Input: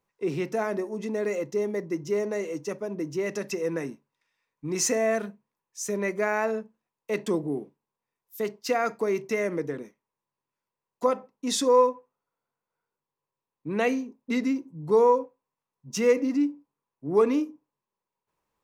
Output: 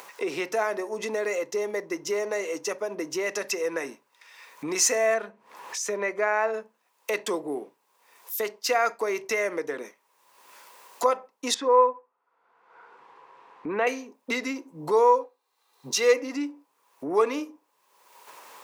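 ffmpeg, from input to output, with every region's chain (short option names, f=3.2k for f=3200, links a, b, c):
-filter_complex "[0:a]asettb=1/sr,asplit=3[a][b][c];[a]atrim=end=5.144[d];[b]atrim=start=5.14:end=6.54,asetpts=PTS-STARTPTS,afade=t=in:d=0.004:c=qsin,afade=t=out:st=1.396:d=0.004:c=qsin,lowpass=f=2.2k:p=1,acompressor=mode=upward:threshold=-39dB:ratio=2.5:attack=3.2:release=140:knee=2.83:detection=peak[e];[c]atrim=start=6.536[f];[d][e]acrossfade=d=0.004:c1=hsin:c2=qsin[g];[g][f]acrossfade=d=0.004:c1=qsin:c2=hsin,asettb=1/sr,asplit=3[h][i][j];[h]atrim=end=11.544[k];[i]atrim=start=11.54:end=13.87,asetpts=PTS-STARTPTS,afade=t=in:d=0.004:c=qsin,afade=t=out:st=2.326:d=0.004:c=qsin,lowpass=1.8k,bandreject=f=580:w=7.1[l];[j]atrim=start=13.866[m];[k][l]acrossfade=d=0.004:c1=hsin:c2=qsin[n];[n][m]acrossfade=d=0.004:c1=qsin:c2=hsin,asettb=1/sr,asplit=3[o][p][q];[o]atrim=end=15.214[r];[p]atrim=start=15.21:end=16.14,asetpts=PTS-STARTPTS,afade=t=in:d=0.004:c=qsin,afade=t=out:st=0.926:d=0.004:c=qsin,equalizer=f=4k:w=4.7:g=11.5,aecho=1:1:2.5:0.42,atrim=end_sample=41013[s];[q]atrim=start=16.136[t];[r][s]acrossfade=d=0.004:c1=hsin:c2=qsin[u];[u][t]acrossfade=d=0.004:c1=qsin:c2=hsin,highpass=590,acompressor=mode=upward:threshold=-28dB:ratio=2.5,volume=4.5dB"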